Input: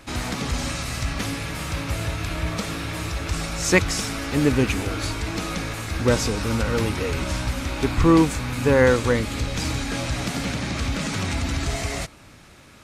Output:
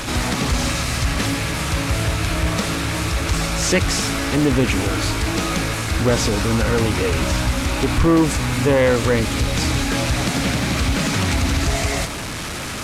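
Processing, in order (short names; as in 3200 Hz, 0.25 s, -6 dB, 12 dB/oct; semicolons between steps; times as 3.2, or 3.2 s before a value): delta modulation 64 kbps, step -28.5 dBFS; in parallel at +2 dB: limiter -16.5 dBFS, peak gain reduction 11.5 dB; on the sum: soft clip -8 dBFS, distortion -19 dB; Doppler distortion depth 0.24 ms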